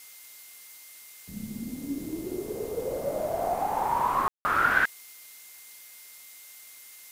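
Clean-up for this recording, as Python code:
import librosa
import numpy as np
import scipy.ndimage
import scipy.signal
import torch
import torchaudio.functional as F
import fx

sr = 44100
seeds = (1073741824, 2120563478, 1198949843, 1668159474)

y = fx.notch(x, sr, hz=2100.0, q=30.0)
y = fx.fix_ambience(y, sr, seeds[0], print_start_s=5.77, print_end_s=6.27, start_s=4.28, end_s=4.45)
y = fx.noise_reduce(y, sr, print_start_s=5.77, print_end_s=6.27, reduce_db=26.0)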